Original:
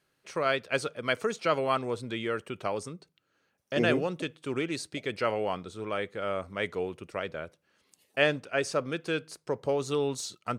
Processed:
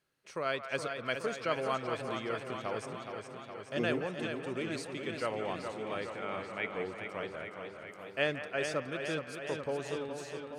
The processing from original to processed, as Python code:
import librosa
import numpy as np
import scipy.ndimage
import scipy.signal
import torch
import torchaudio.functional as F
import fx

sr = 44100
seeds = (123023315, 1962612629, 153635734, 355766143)

y = fx.fade_out_tail(x, sr, length_s=0.98)
y = fx.cabinet(y, sr, low_hz=110.0, low_slope=24, high_hz=3300.0, hz=(530.0, 850.0, 2300.0), db=(-8, 7, 7), at=(6.09, 6.75))
y = fx.echo_wet_bandpass(y, sr, ms=173, feedback_pct=52, hz=1300.0, wet_db=-9.5)
y = fx.echo_warbled(y, sr, ms=418, feedback_pct=69, rate_hz=2.8, cents=50, wet_db=-7.0)
y = y * 10.0 ** (-6.5 / 20.0)